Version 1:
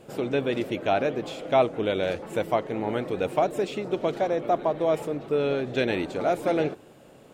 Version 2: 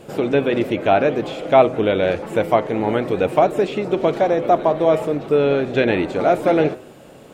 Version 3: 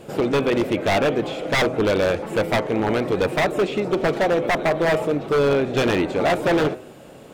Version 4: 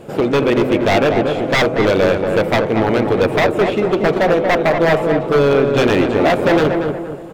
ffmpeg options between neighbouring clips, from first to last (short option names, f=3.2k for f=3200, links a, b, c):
-filter_complex "[0:a]acrossover=split=3300[a][b];[b]acompressor=threshold=-52dB:ratio=4:attack=1:release=60[c];[a][c]amix=inputs=2:normalize=0,bandreject=f=126.6:t=h:w=4,bandreject=f=253.2:t=h:w=4,bandreject=f=379.8:t=h:w=4,bandreject=f=506.4:t=h:w=4,bandreject=f=633:t=h:w=4,bandreject=f=759.6:t=h:w=4,bandreject=f=886.2:t=h:w=4,bandreject=f=1.0128k:t=h:w=4,bandreject=f=1.1394k:t=h:w=4,bandreject=f=1.266k:t=h:w=4,bandreject=f=1.3926k:t=h:w=4,bandreject=f=1.5192k:t=h:w=4,bandreject=f=1.6458k:t=h:w=4,bandreject=f=1.7724k:t=h:w=4,bandreject=f=1.899k:t=h:w=4,bandreject=f=2.0256k:t=h:w=4,bandreject=f=2.1522k:t=h:w=4,bandreject=f=2.2788k:t=h:w=4,bandreject=f=2.4054k:t=h:w=4,bandreject=f=2.532k:t=h:w=4,bandreject=f=2.6586k:t=h:w=4,volume=8.5dB"
-af "aeval=exprs='0.224*(abs(mod(val(0)/0.224+3,4)-2)-1)':c=same"
-filter_complex "[0:a]asplit=2[a][b];[b]adynamicsmooth=sensitivity=7.5:basefreq=2.4k,volume=-2.5dB[c];[a][c]amix=inputs=2:normalize=0,asplit=2[d][e];[e]adelay=234,lowpass=f=1.6k:p=1,volume=-4.5dB,asplit=2[f][g];[g]adelay=234,lowpass=f=1.6k:p=1,volume=0.42,asplit=2[h][i];[i]adelay=234,lowpass=f=1.6k:p=1,volume=0.42,asplit=2[j][k];[k]adelay=234,lowpass=f=1.6k:p=1,volume=0.42,asplit=2[l][m];[m]adelay=234,lowpass=f=1.6k:p=1,volume=0.42[n];[d][f][h][j][l][n]amix=inputs=6:normalize=0"